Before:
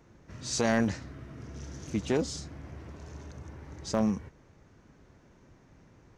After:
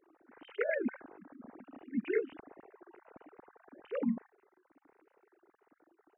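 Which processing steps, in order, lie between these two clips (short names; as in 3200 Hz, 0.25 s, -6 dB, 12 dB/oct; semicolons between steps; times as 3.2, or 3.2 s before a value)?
sine-wave speech; formant shift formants -3 st; gain -2.5 dB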